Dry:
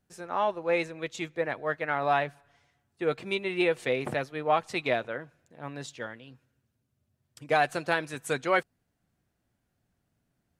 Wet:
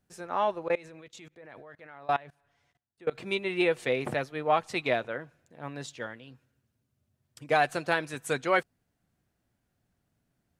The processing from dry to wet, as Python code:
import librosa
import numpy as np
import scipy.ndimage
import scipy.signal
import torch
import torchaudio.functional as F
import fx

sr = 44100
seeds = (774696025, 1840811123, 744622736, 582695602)

y = fx.level_steps(x, sr, step_db=24, at=(0.68, 3.15))